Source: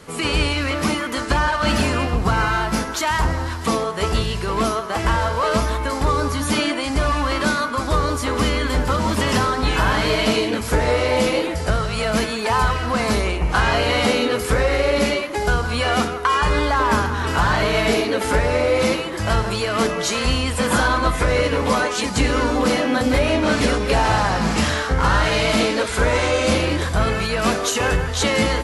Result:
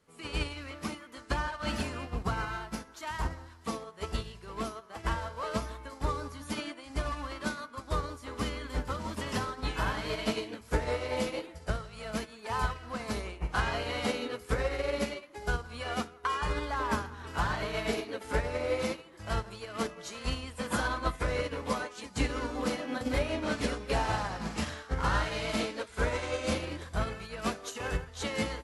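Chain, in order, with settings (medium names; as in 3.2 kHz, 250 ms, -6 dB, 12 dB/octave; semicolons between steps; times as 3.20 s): upward expansion 2.5:1, over -26 dBFS; trim -8.5 dB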